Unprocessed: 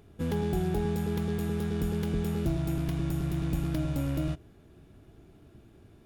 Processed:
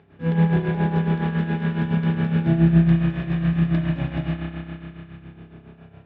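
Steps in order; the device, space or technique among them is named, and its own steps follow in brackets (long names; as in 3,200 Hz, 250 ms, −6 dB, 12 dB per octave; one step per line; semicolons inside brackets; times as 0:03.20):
combo amplifier with spring reverb and tremolo (spring reverb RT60 3.3 s, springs 30 ms, chirp 55 ms, DRR −7.5 dB; amplitude tremolo 7.2 Hz, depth 65%; loudspeaker in its box 110–3,600 Hz, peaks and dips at 160 Hz +5 dB, 300 Hz −4 dB, 840 Hz +4 dB, 1,700 Hz +7 dB, 2,500 Hz +3 dB)
level +3 dB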